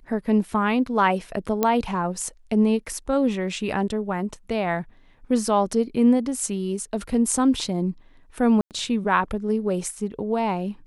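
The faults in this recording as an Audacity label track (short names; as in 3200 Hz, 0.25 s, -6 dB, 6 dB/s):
1.630000	1.630000	pop -7 dBFS
8.610000	8.710000	gap 98 ms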